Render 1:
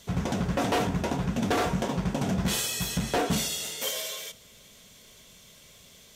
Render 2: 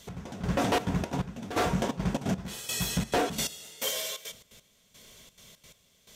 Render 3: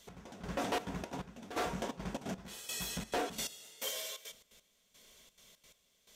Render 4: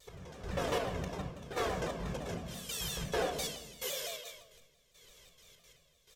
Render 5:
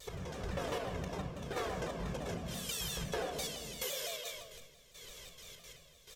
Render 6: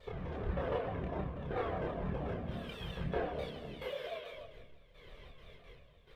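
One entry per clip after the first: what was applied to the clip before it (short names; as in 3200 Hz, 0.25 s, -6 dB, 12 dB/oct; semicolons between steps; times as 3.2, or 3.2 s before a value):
step gate "x....xxxx.xx." 173 bpm -12 dB
bell 110 Hz -10 dB 1.5 oct; gain -7.5 dB
comb 1.8 ms, depth 48%; shoebox room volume 3400 m³, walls furnished, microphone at 4.1 m; shaped vibrato saw down 5.9 Hz, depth 160 cents; gain -2.5 dB
compressor 3:1, threshold -47 dBFS, peak gain reduction 13.5 dB; gain +8 dB
chorus voices 4, 0.33 Hz, delay 28 ms, depth 2 ms; air absorption 470 m; gain +6.5 dB; Opus 48 kbps 48000 Hz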